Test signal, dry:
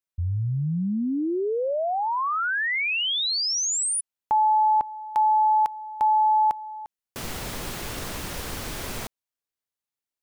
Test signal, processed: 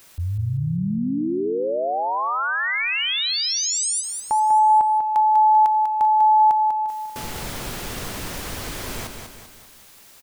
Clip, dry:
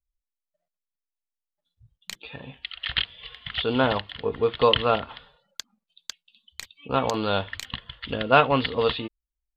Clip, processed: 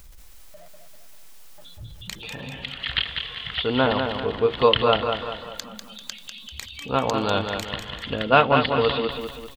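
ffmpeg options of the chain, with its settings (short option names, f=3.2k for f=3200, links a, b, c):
-filter_complex "[0:a]acompressor=mode=upward:threshold=-30dB:ratio=4:attack=0.1:release=21:knee=2.83:detection=peak,asplit=2[a][b];[b]aecho=0:1:196|392|588|784|980:0.501|0.226|0.101|0.0457|0.0206[c];[a][c]amix=inputs=2:normalize=0,volume=1dB"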